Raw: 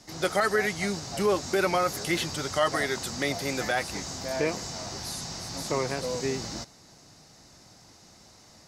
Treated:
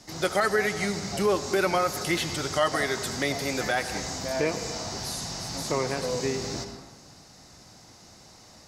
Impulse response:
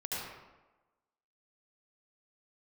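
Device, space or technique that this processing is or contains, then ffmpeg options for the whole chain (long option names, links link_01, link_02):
ducked reverb: -filter_complex "[0:a]asplit=3[link_01][link_02][link_03];[1:a]atrim=start_sample=2205[link_04];[link_02][link_04]afir=irnorm=-1:irlink=0[link_05];[link_03]apad=whole_len=382653[link_06];[link_05][link_06]sidechaincompress=threshold=-31dB:ratio=8:attack=16:release=355,volume=-7dB[link_07];[link_01][link_07]amix=inputs=2:normalize=0"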